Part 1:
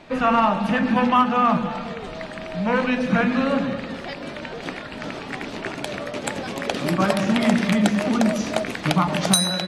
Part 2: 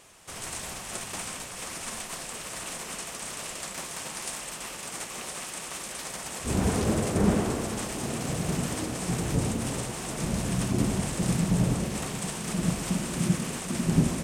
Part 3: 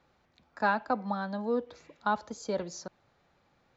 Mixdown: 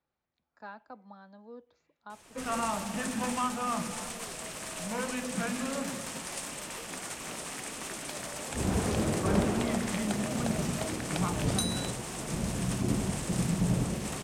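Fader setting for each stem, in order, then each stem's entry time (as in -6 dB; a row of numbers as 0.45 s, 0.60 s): -14.0 dB, -3.5 dB, -18.0 dB; 2.25 s, 2.10 s, 0.00 s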